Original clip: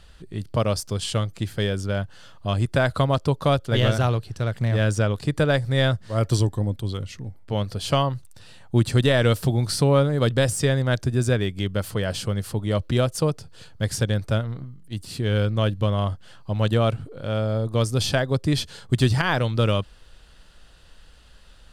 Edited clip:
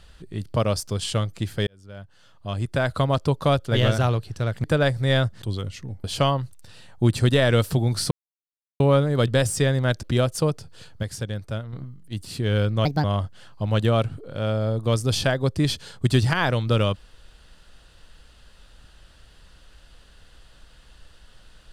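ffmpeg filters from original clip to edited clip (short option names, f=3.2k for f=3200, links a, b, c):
-filter_complex "[0:a]asplit=11[a][b][c][d][e][f][g][h][i][j][k];[a]atrim=end=1.67,asetpts=PTS-STARTPTS,afade=t=out:st=1.666:d=0.004:c=hsin[l];[b]atrim=start=1.67:end=4.642,asetpts=PTS-STARTPTS,afade=t=in:d=1.54[m];[c]atrim=start=5.318:end=6.102[n];[d]atrim=start=6.778:end=7.402[o];[e]atrim=start=7.758:end=9.83,asetpts=PTS-STARTPTS,afade=t=out:st=2.068:d=0.004:c=hsin,apad=pad_dur=0.69[p];[f]atrim=start=9.83:end=11.062,asetpts=PTS-STARTPTS,afade=t=in:d=0.004:c=hsin[q];[g]atrim=start=12.828:end=13.832[r];[h]atrim=start=13.828:end=14.532,asetpts=PTS-STARTPTS,volume=-7dB[s];[i]atrim=start=14.528:end=15.654[t];[j]atrim=start=15.65:end=15.92,asetpts=PTS-STARTPTS,asetrate=63063,aresample=44100[u];[k]atrim=start=15.916[v];[l][m]concat=n=2:v=0:a=1[w];[w][n]acrossfade=d=0.004:c1=hsin:c2=hsin[x];[x][o]acrossfade=d=0.004:c1=hsin:c2=hsin[y];[p][q]concat=n=2:v=0:a=1[z];[y][z]acrossfade=d=0.004:c1=hsin:c2=hsin[aa];[aa][r]acrossfade=d=0.004:c1=hsin:c2=hsin[ab];[ab][s]acrossfade=d=0.004:c1=hsin:c2=hsin[ac];[ac][t]acrossfade=d=0.004:c1=hsin:c2=hsin[ad];[ad][u]acrossfade=d=0.004:c1=hsin:c2=hsin[ae];[ae][v]acrossfade=d=0.004:c1=hsin:c2=hsin"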